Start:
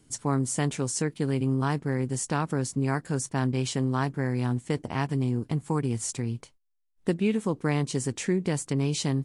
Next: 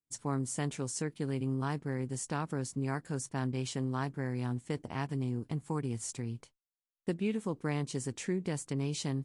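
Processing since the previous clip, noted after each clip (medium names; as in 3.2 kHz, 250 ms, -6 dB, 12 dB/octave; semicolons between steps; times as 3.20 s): expander -43 dBFS; trim -7.5 dB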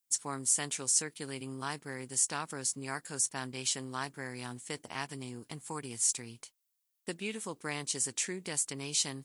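tilt EQ +4 dB/octave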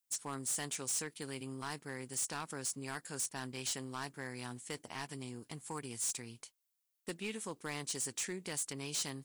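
hard clipper -30.5 dBFS, distortion -8 dB; trim -2.5 dB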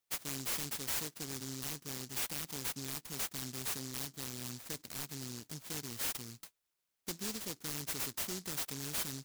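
delay time shaken by noise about 5.6 kHz, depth 0.43 ms; trim +1 dB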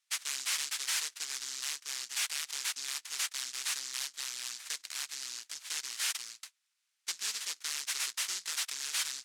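Butterworth band-pass 3.8 kHz, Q 0.51; trim +8 dB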